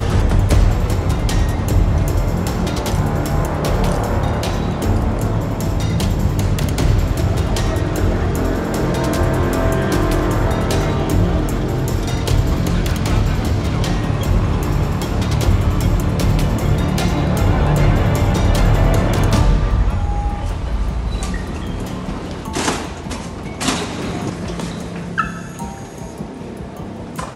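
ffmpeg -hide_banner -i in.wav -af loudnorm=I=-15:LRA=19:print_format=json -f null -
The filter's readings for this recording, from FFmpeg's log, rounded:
"input_i" : "-18.9",
"input_tp" : "-4.0",
"input_lra" : "9.6",
"input_thresh" : "-29.2",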